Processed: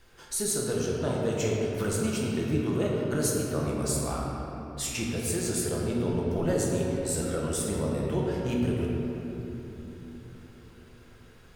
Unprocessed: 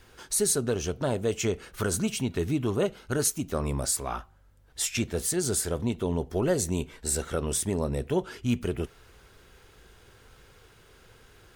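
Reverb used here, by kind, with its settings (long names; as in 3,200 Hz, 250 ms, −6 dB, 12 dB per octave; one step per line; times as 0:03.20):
rectangular room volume 220 cubic metres, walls hard, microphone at 0.74 metres
level −5.5 dB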